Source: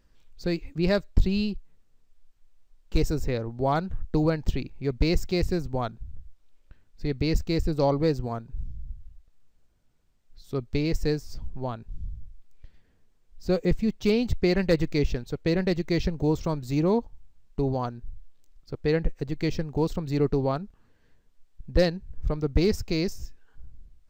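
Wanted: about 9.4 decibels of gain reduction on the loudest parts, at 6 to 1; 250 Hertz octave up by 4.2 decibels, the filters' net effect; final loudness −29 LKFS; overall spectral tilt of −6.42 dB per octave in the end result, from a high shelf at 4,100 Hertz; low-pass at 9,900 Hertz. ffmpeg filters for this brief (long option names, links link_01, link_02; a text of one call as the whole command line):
ffmpeg -i in.wav -af "lowpass=9900,equalizer=frequency=250:width_type=o:gain=6,highshelf=frequency=4100:gain=8.5,acompressor=threshold=-25dB:ratio=6,volume=3dB" out.wav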